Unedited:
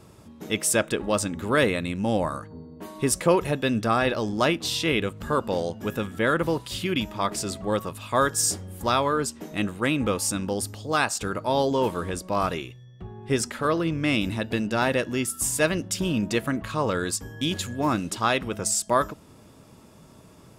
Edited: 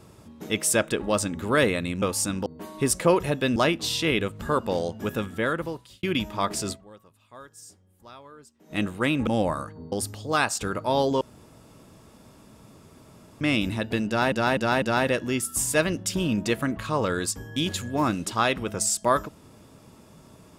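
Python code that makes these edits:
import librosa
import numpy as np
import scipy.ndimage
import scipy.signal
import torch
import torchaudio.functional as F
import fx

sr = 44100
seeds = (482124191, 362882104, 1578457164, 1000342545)

y = fx.edit(x, sr, fx.swap(start_s=2.02, length_s=0.65, other_s=10.08, other_length_s=0.44),
    fx.cut(start_s=3.77, length_s=0.6),
    fx.fade_out_span(start_s=6.04, length_s=0.8),
    fx.fade_down_up(start_s=7.53, length_s=2.02, db=-23.5, fade_s=0.41, curve='exp'),
    fx.room_tone_fill(start_s=11.81, length_s=2.2),
    fx.repeat(start_s=14.67, length_s=0.25, count=4), tone=tone)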